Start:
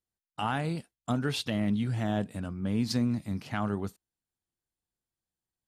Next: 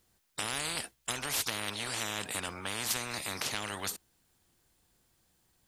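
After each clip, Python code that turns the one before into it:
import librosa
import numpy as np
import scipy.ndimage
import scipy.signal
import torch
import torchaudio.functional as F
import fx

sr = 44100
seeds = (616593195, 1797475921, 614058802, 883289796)

y = fx.spectral_comp(x, sr, ratio=10.0)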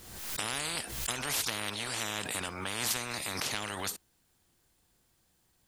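y = fx.pre_swell(x, sr, db_per_s=49.0)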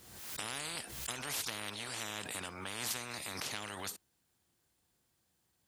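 y = scipy.signal.sosfilt(scipy.signal.butter(2, 61.0, 'highpass', fs=sr, output='sos'), x)
y = y * 10.0 ** (-6.0 / 20.0)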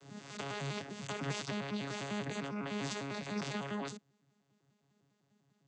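y = fx.vocoder_arp(x, sr, chord='bare fifth', root=49, every_ms=100)
y = y * 10.0 ** (4.0 / 20.0)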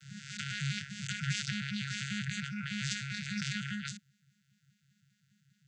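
y = fx.brickwall_bandstop(x, sr, low_hz=210.0, high_hz=1300.0)
y = y * 10.0 ** (6.0 / 20.0)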